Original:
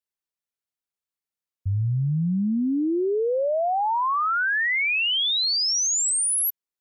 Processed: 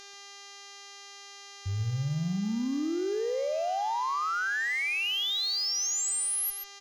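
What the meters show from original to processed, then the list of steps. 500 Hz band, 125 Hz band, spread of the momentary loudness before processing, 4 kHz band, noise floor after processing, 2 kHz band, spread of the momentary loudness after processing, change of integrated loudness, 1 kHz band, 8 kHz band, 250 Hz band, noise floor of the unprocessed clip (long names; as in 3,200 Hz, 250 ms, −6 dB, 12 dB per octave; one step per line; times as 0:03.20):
−7.0 dB, −7.0 dB, 5 LU, −6.5 dB, −48 dBFS, −6.5 dB, 19 LU, −6.5 dB, −6.5 dB, −6.5 dB, −7.0 dB, below −85 dBFS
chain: hum with harmonics 400 Hz, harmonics 17, −41 dBFS 0 dB per octave
harmonic generator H 6 −27 dB, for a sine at −17 dBFS
on a send: single-tap delay 136 ms −8 dB
on the sum: level −7.5 dB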